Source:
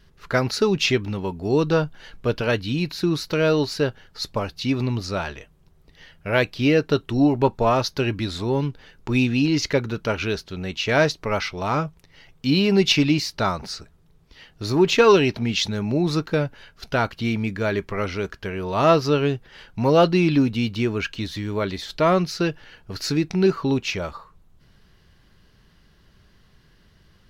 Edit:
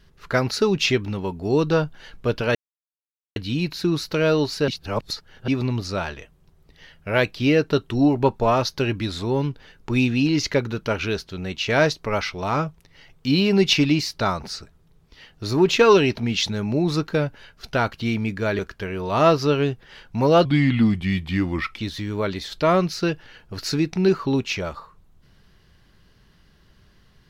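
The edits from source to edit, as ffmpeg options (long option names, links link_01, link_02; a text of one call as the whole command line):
ffmpeg -i in.wav -filter_complex "[0:a]asplit=7[link_01][link_02][link_03][link_04][link_05][link_06][link_07];[link_01]atrim=end=2.55,asetpts=PTS-STARTPTS,afade=type=out:start_time=2.546:duration=0.004:curve=hsin,apad=pad_dur=0.81[link_08];[link_02]atrim=start=2.55:end=3.872,asetpts=PTS-STARTPTS,afade=type=in:duration=0.004:curve=hsin[link_09];[link_03]atrim=start=3.868:end=4.672,asetpts=PTS-STARTPTS,areverse[link_10];[link_04]atrim=start=4.668:end=17.782[link_11];[link_05]atrim=start=18.218:end=20.084[link_12];[link_06]atrim=start=20.08:end=21.16,asetpts=PTS-STARTPTS,asetrate=35721,aresample=44100[link_13];[link_07]atrim=start=21.156[link_14];[link_08][link_09]concat=n=2:v=0:a=1[link_15];[link_15][link_10]acrossfade=duration=0.004:curve1=hsin:curve2=hsin[link_16];[link_16][link_11]acrossfade=duration=0.004:curve1=hsin:curve2=hsin[link_17];[link_17][link_12]acrossfade=duration=0.004:curve1=hsin:curve2=hsin[link_18];[link_18][link_13]acrossfade=duration=0.004:curve1=hsin:curve2=hsin[link_19];[link_19][link_14]acrossfade=duration=0.004:curve1=hsin:curve2=hsin" out.wav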